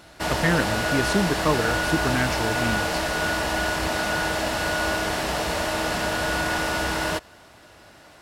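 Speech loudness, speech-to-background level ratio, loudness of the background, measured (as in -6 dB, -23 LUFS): -26.0 LUFS, -1.5 dB, -24.5 LUFS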